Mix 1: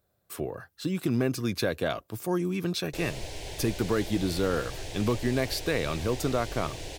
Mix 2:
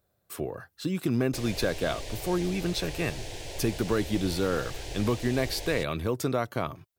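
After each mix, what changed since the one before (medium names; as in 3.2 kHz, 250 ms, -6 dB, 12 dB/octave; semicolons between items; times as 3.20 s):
background: entry -1.60 s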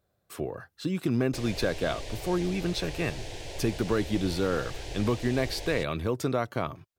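master: add treble shelf 9.4 kHz -9 dB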